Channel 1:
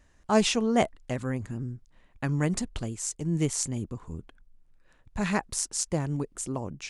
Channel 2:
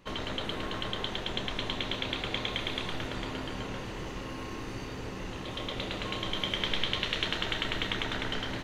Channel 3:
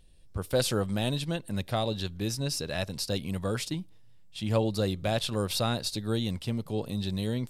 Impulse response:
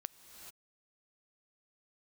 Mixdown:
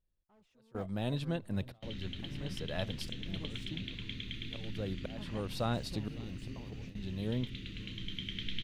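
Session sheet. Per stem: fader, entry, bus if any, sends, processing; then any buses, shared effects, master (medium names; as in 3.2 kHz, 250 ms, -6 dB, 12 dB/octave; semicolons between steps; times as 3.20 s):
-16.5 dB, 0.00 s, no send, no echo send, de-esser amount 60%; saturation -25.5 dBFS, distortion -8 dB
-5.5 dB, 1.75 s, send -6 dB, no echo send, Chebyshev band-stop 210–2800 Hz, order 2
-3.5 dB, 0.00 s, send -23 dB, echo send -24 dB, slow attack 652 ms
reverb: on, pre-delay 3 ms
echo: feedback delay 553 ms, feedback 32%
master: peaking EQ 9.2 kHz -12.5 dB 2.4 oct; gate with hold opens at -35 dBFS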